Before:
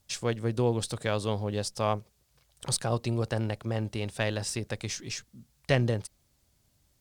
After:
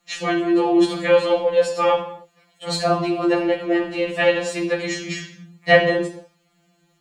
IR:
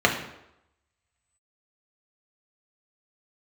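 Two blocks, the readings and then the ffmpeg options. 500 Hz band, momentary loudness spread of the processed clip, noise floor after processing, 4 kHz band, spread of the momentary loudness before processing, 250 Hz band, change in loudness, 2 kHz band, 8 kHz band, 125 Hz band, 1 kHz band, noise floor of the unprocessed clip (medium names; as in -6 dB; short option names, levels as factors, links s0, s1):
+13.5 dB, 14 LU, -64 dBFS, +8.5 dB, 8 LU, +12.5 dB, +11.0 dB, +14.5 dB, -0.5 dB, -3.5 dB, +12.5 dB, -70 dBFS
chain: -filter_complex "[1:a]atrim=start_sample=2205,afade=t=out:st=0.35:d=0.01,atrim=end_sample=15876[s0];[0:a][s0]afir=irnorm=-1:irlink=0,afftfilt=real='re*2.83*eq(mod(b,8),0)':imag='im*2.83*eq(mod(b,8),0)':win_size=2048:overlap=0.75,volume=0.631"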